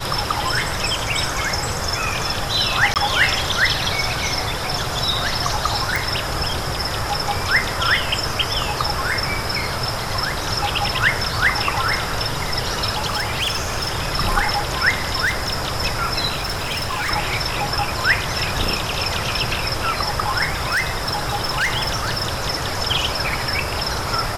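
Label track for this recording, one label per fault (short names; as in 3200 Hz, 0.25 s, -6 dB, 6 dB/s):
2.940000	2.960000	gap 18 ms
5.960000	5.960000	pop
13.060000	13.900000	clipped -17.5 dBFS
15.250000	15.680000	clipped -16.5 dBFS
16.350000	17.110000	clipped -20 dBFS
20.480000	22.290000	clipped -16 dBFS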